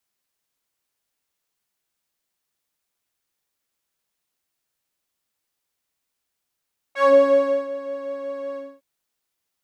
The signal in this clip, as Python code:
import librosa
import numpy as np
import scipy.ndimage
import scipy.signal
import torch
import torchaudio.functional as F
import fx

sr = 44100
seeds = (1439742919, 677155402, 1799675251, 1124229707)

y = fx.sub_patch_pwm(sr, seeds[0], note=73, wave2='saw', interval_st=0, detune_cents=16, level2_db=-9.0, sub_db=-16, noise_db=-22, kind='bandpass', cutoff_hz=180.0, q=1.9, env_oct=3.5, env_decay_s=0.16, env_sustain_pct=30, attack_ms=133.0, decay_s=0.6, sustain_db=-17.5, release_s=0.25, note_s=1.61, lfo_hz=5.5, width_pct=31, width_swing_pct=14)